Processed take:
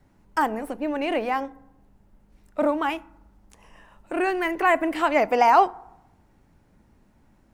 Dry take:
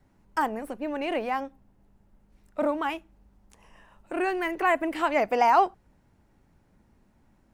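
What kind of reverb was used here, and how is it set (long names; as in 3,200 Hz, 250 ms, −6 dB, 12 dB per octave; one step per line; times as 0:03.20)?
feedback delay network reverb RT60 0.88 s, low-frequency decay 1×, high-frequency decay 0.4×, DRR 19 dB
level +3.5 dB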